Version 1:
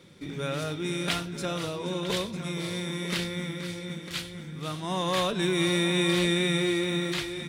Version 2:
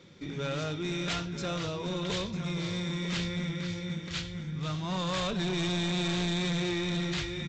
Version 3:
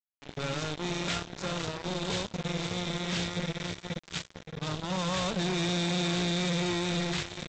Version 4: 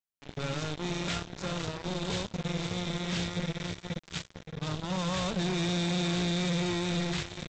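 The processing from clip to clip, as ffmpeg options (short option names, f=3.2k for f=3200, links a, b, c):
-af "asubboost=boost=3.5:cutoff=160,aresample=16000,asoftclip=type=hard:threshold=-27dB,aresample=44100,volume=-1dB"
-af "highpass=f=59:w=0.5412,highpass=f=59:w=1.3066,aresample=16000,acrusher=bits=4:mix=0:aa=0.5,aresample=44100"
-af "lowshelf=f=190:g=5,volume=-2dB"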